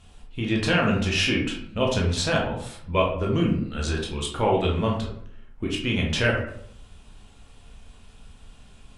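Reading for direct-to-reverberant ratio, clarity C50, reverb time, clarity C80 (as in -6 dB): -2.0 dB, 4.5 dB, 0.65 s, 8.5 dB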